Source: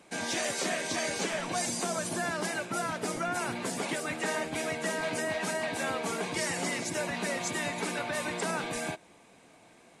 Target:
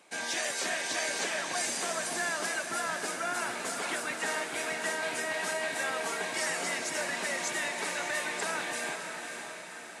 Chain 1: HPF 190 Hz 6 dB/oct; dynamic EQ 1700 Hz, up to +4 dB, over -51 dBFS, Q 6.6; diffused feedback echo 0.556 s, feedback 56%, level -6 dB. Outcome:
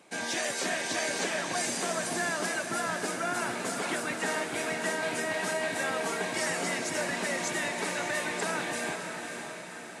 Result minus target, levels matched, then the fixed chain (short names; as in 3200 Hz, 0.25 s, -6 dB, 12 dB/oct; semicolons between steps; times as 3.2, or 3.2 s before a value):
250 Hz band +5.5 dB
HPF 680 Hz 6 dB/oct; dynamic EQ 1700 Hz, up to +4 dB, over -51 dBFS, Q 6.6; diffused feedback echo 0.556 s, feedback 56%, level -6 dB